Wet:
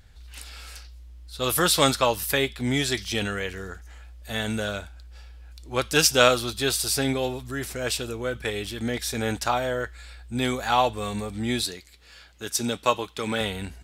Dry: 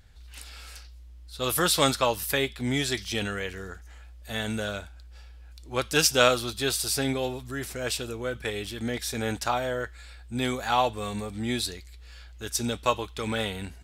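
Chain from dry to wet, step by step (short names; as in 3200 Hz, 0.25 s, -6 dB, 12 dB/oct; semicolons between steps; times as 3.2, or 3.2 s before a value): 11.63–13.41 HPF 130 Hz 12 dB/oct; gain +2.5 dB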